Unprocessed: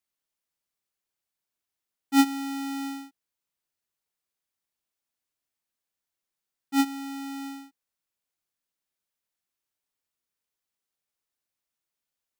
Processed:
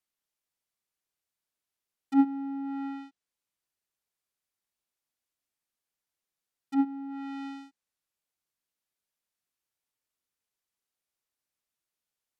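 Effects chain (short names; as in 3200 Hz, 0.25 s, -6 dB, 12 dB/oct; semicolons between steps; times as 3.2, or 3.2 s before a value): treble ducked by the level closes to 730 Hz, closed at -29 dBFS; gain -1.5 dB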